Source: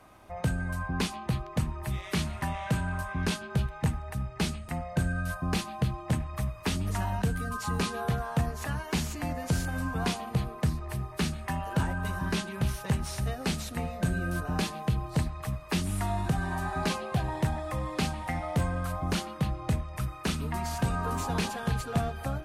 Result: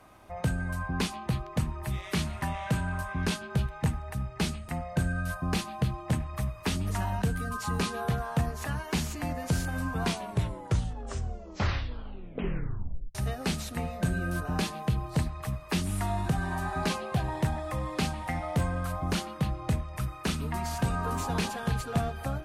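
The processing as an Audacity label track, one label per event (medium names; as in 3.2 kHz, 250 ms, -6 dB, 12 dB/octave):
10.000000	10.000000	tape stop 3.15 s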